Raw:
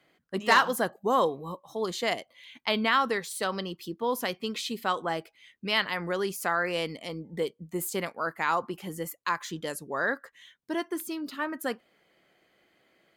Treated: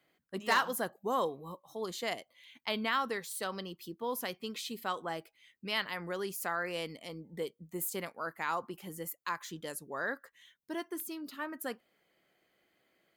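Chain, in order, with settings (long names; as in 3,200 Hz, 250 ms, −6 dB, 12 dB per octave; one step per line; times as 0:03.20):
high-shelf EQ 12,000 Hz +12 dB
level −7.5 dB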